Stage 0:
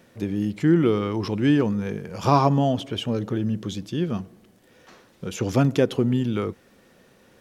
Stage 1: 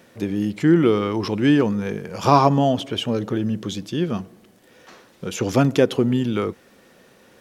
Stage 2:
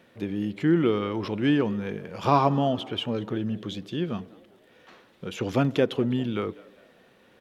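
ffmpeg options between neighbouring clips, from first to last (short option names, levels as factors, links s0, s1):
-af "lowshelf=f=150:g=-7.5,volume=1.68"
-filter_complex "[0:a]highshelf=f=4500:t=q:w=1.5:g=-6.5,asplit=4[s0][s1][s2][s3];[s1]adelay=199,afreqshift=88,volume=0.0794[s4];[s2]adelay=398,afreqshift=176,volume=0.0343[s5];[s3]adelay=597,afreqshift=264,volume=0.0146[s6];[s0][s4][s5][s6]amix=inputs=4:normalize=0,volume=0.501"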